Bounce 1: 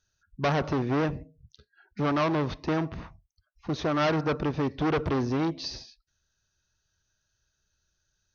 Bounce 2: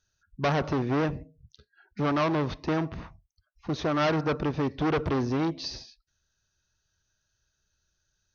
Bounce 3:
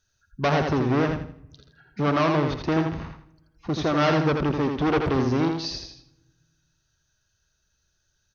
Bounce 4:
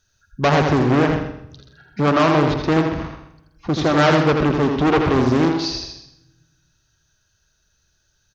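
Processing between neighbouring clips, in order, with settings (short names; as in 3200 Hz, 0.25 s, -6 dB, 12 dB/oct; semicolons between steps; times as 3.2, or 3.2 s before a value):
nothing audible
feedback echo 82 ms, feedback 30%, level -5 dB; on a send at -23 dB: reverb RT60 1.4 s, pre-delay 3 ms; on the sum: gain +3 dB
on a send: feedback echo 0.128 s, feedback 26%, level -10 dB; on the sum: Doppler distortion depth 0.27 ms; gain +6 dB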